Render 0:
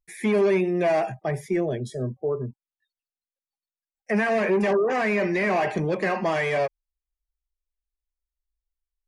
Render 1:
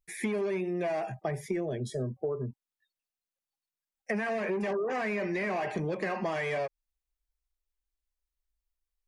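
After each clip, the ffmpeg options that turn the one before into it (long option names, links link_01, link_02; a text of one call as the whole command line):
ffmpeg -i in.wav -af "acompressor=threshold=-29dB:ratio=6" out.wav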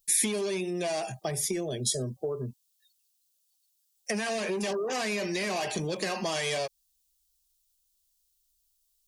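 ffmpeg -i in.wav -af "aexciter=amount=7.5:drive=4.8:freq=3000" out.wav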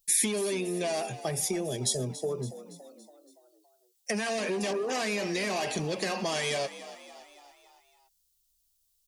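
ffmpeg -i in.wav -filter_complex "[0:a]asplit=6[link_01][link_02][link_03][link_04][link_05][link_06];[link_02]adelay=282,afreqshift=49,volume=-15dB[link_07];[link_03]adelay=564,afreqshift=98,volume=-20.2dB[link_08];[link_04]adelay=846,afreqshift=147,volume=-25.4dB[link_09];[link_05]adelay=1128,afreqshift=196,volume=-30.6dB[link_10];[link_06]adelay=1410,afreqshift=245,volume=-35.8dB[link_11];[link_01][link_07][link_08][link_09][link_10][link_11]amix=inputs=6:normalize=0" out.wav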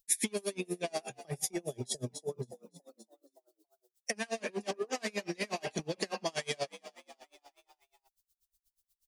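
ffmpeg -i in.wav -af "aeval=exprs='val(0)*pow(10,-32*(0.5-0.5*cos(2*PI*8.3*n/s))/20)':channel_layout=same" out.wav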